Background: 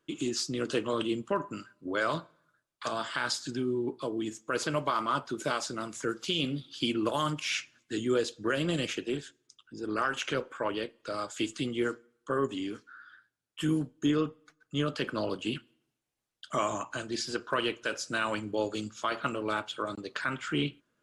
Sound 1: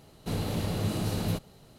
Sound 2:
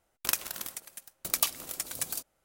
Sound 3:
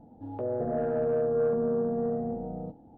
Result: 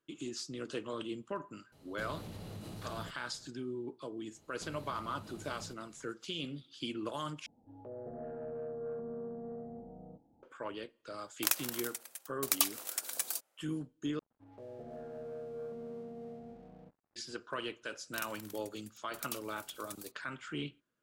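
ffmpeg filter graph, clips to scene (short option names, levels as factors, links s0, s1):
-filter_complex "[1:a]asplit=2[s0][s1];[3:a]asplit=2[s2][s3];[2:a]asplit=2[s4][s5];[0:a]volume=0.335[s6];[s0]acompressor=threshold=0.0178:ratio=6:attack=10:release=123:knee=1:detection=peak[s7];[s1]acompressor=threshold=0.02:ratio=6:attack=3.2:release=140:knee=1:detection=peak[s8];[s4]highpass=440[s9];[s3]aeval=exprs='sgn(val(0))*max(abs(val(0))-0.00335,0)':c=same[s10];[s6]asplit=3[s11][s12][s13];[s11]atrim=end=7.464[s14];[s2]atrim=end=2.97,asetpts=PTS-STARTPTS,volume=0.188[s15];[s12]atrim=start=10.426:end=14.194[s16];[s10]atrim=end=2.97,asetpts=PTS-STARTPTS,volume=0.15[s17];[s13]atrim=start=17.156[s18];[s7]atrim=end=1.78,asetpts=PTS-STARTPTS,volume=0.376,afade=t=in:d=0.004:c=hsin,afade=t=out:st=1.776:d=0.004:c=hsin,adelay=1720[s19];[s8]atrim=end=1.78,asetpts=PTS-STARTPTS,volume=0.237,afade=t=in:d=0.004:c=hsin,afade=t=out:st=1.776:d=0.004:c=hsin,adelay=4350[s20];[s9]atrim=end=2.44,asetpts=PTS-STARTPTS,volume=0.794,afade=t=in:d=0.004:c=hsin,afade=t=out:st=2.436:d=0.004:c=hsin,adelay=11180[s21];[s5]atrim=end=2.44,asetpts=PTS-STARTPTS,volume=0.178,afade=t=in:d=0.004:c=hsin,afade=t=out:st=2.436:d=0.004:c=hsin,adelay=17890[s22];[s14][s15]acrossfade=d=0.004:c1=hsin:c2=hsin[s23];[s23][s16]acrossfade=d=0.004:c1=hsin:c2=hsin[s24];[s24][s17]acrossfade=d=0.004:c1=hsin:c2=hsin[s25];[s25][s18]acrossfade=d=0.004:c1=hsin:c2=hsin[s26];[s26][s19][s20][s21][s22]amix=inputs=5:normalize=0"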